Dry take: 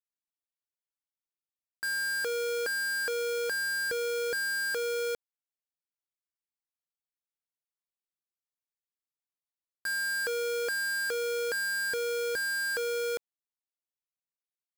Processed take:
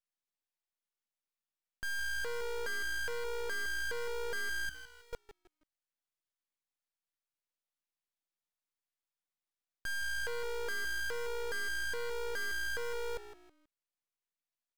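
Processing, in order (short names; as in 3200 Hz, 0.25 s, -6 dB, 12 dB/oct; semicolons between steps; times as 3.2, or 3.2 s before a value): overdrive pedal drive 10 dB, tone 4500 Hz, clips at -31 dBFS; 4.69–5.13 passive tone stack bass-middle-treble 6-0-2; frequency-shifting echo 0.161 s, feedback 31%, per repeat -58 Hz, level -13.5 dB; half-wave rectifier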